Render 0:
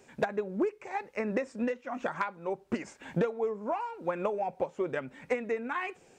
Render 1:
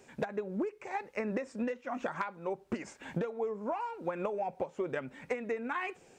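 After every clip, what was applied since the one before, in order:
downward compressor, threshold −30 dBFS, peak gain reduction 7.5 dB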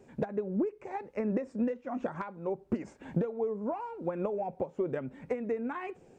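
tilt shelving filter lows +8 dB, about 880 Hz
level −2 dB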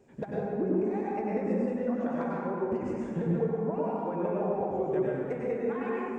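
dense smooth reverb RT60 2.4 s, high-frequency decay 0.45×, pre-delay 85 ms, DRR −6 dB
level −4 dB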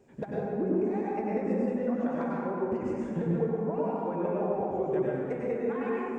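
echo through a band-pass that steps 117 ms, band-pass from 250 Hz, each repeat 0.7 octaves, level −9 dB

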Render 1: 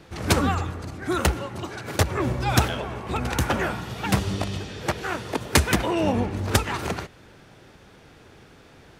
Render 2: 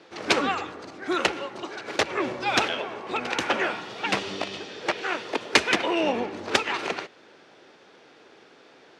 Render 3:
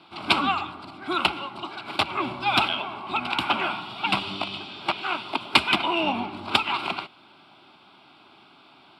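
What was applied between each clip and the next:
Chebyshev band-pass filter 360–5,100 Hz, order 2; dynamic equaliser 2,500 Hz, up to +6 dB, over −42 dBFS, Q 1.5
phaser with its sweep stopped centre 1,800 Hz, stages 6; level +4.5 dB

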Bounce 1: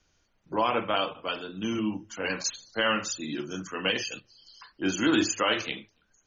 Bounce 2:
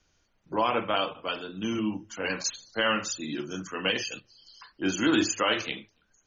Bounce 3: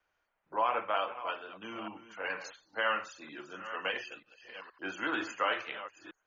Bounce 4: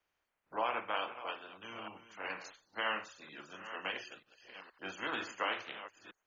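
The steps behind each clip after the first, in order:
no processing that can be heard
delay that plays each chunk backwards 470 ms, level −13 dB; three-way crossover with the lows and the highs turned down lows −19 dB, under 530 Hz, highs −21 dB, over 2,400 Hz; level −1.5 dB
ceiling on every frequency bin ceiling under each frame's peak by 12 dB; level −4.5 dB

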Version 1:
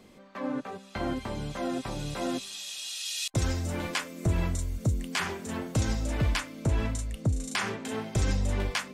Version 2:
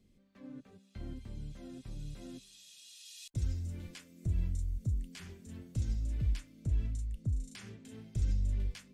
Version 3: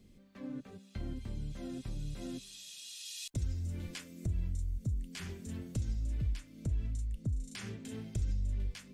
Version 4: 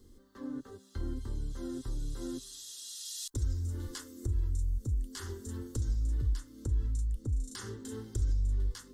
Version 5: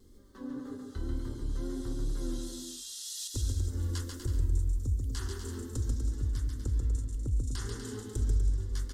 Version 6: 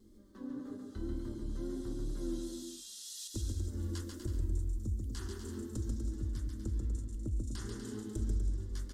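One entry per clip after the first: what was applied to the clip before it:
guitar amp tone stack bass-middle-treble 10-0-1; level +4 dB
downward compressor 2 to 1, threshold −45 dBFS, peak gain reduction 10.5 dB; level +7 dB
in parallel at −10 dB: soft clipping −35 dBFS, distortion −11 dB; on the sum: phaser with its sweep stopped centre 650 Hz, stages 6; level +4 dB
tape wow and flutter 54 cents; bouncing-ball delay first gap 140 ms, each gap 0.75×, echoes 5
hollow resonant body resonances 210/320/610/2,400 Hz, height 12 dB, ringing for 85 ms; level −6 dB

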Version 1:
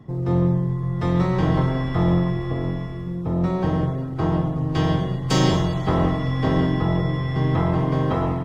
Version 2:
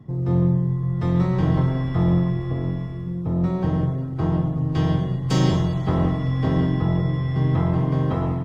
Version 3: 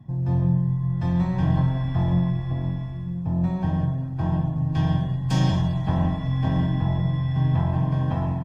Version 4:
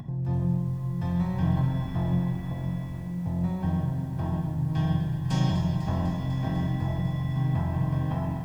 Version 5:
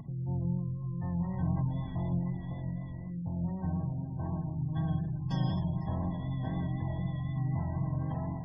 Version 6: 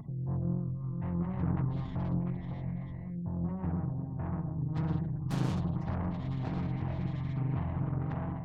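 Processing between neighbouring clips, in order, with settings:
parametric band 120 Hz +6.5 dB 2.5 octaves; level −5 dB
flanger 0.41 Hz, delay 7.1 ms, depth 4.6 ms, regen −79%; comb filter 1.2 ms, depth 69%
upward compression, threshold −25 dBFS; feedback echo at a low word length 249 ms, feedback 80%, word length 8 bits, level −11 dB; level −4.5 dB
pitch vibrato 4 Hz 30 cents; gate on every frequency bin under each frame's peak −30 dB strong; level −6 dB
phase distortion by the signal itself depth 0.81 ms

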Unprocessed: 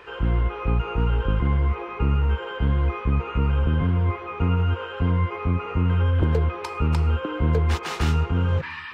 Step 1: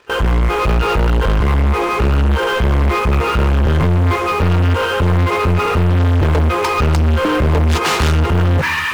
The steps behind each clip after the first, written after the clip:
leveller curve on the samples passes 5
noise gate with hold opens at −13 dBFS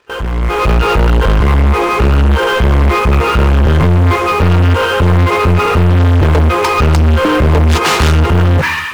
automatic gain control gain up to 11 dB
level −4 dB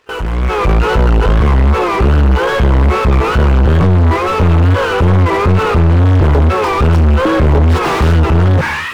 tape wow and flutter 110 cents
slew-rate limiting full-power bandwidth 290 Hz

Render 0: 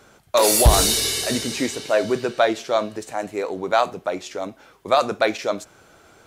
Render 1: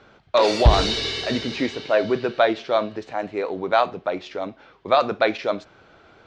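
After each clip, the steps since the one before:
low-pass filter 4,300 Hz 24 dB per octave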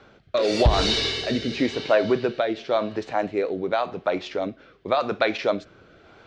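downward compressor 4 to 1, threshold −18 dBFS, peak gain reduction 9 dB
rotating-speaker cabinet horn 0.9 Hz
level +3.5 dB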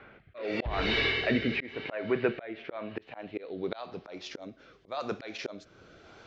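volume swells 396 ms
low-pass filter sweep 2,200 Hz → 6,600 Hz, 0:02.71–0:04.41
level −2.5 dB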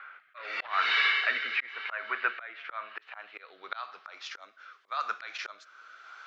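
high-pass with resonance 1,300 Hz, resonance Q 3.6

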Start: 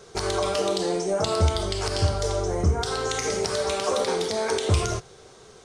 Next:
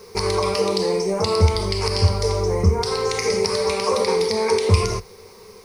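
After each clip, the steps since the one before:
in parallel at −11.5 dB: bit-depth reduction 8 bits, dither triangular
on the sum: EQ curve with evenly spaced ripples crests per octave 0.87, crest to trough 12 dB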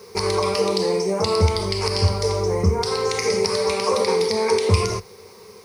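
high-pass filter 78 Hz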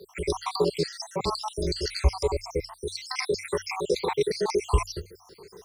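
time-frequency cells dropped at random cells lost 72%
mains-hum notches 60/120 Hz
frequency shifter −25 Hz
level −1.5 dB

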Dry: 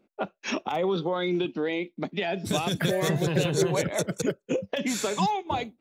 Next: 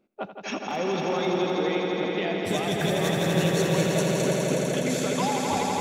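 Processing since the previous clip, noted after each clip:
echo that builds up and dies away 83 ms, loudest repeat 5, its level −5.5 dB
level −3 dB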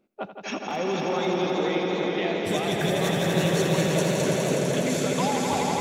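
feedback echo with a swinging delay time 484 ms, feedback 57%, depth 184 cents, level −9 dB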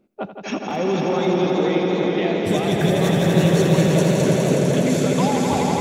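low-shelf EQ 470 Hz +8 dB
level +1.5 dB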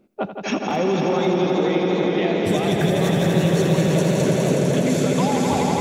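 downward compressor 2 to 1, threshold −23 dBFS, peak gain reduction 7 dB
level +4 dB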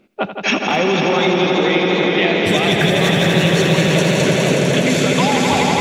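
parametric band 2,600 Hz +11 dB 2.1 octaves
level +2.5 dB

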